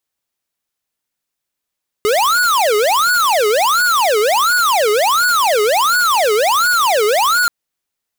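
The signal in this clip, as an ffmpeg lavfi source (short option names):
-f lavfi -i "aevalsrc='0.211*(2*lt(mod((942*t-528/(2*PI*1.4)*sin(2*PI*1.4*t)),1),0.5)-1)':d=5.43:s=44100"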